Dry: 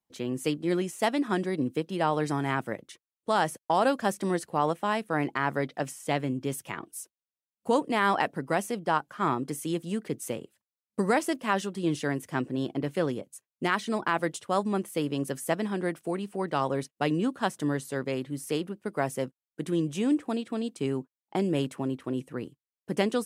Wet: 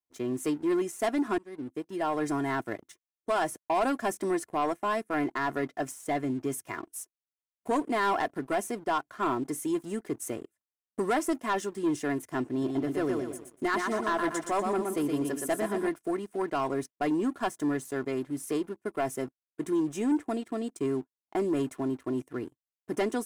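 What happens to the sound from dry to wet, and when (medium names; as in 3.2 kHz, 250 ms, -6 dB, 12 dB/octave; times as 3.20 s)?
1.38–2.29 s: fade in linear, from -23 dB
12.49–15.89 s: feedback delay 120 ms, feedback 37%, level -5 dB
whole clip: high-order bell 3.5 kHz -8 dB 1.1 oct; comb 2.9 ms, depth 62%; waveshaping leveller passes 2; trim -8.5 dB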